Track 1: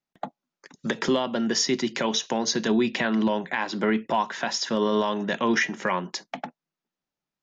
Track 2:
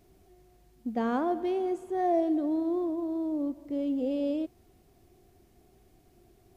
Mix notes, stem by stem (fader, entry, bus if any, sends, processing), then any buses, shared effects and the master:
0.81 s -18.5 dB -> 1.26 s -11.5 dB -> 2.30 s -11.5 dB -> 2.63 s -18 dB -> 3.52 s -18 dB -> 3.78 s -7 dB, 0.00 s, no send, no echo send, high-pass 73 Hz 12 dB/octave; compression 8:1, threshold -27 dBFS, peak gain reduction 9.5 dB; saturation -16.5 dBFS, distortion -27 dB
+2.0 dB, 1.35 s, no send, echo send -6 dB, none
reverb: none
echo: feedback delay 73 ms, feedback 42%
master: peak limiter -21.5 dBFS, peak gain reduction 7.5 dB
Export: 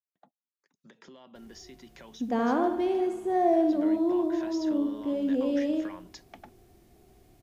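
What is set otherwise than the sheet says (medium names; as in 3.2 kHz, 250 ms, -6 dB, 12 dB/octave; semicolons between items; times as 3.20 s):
stem 1 -18.5 dB -> -25.0 dB; master: missing peak limiter -21.5 dBFS, peak gain reduction 7.5 dB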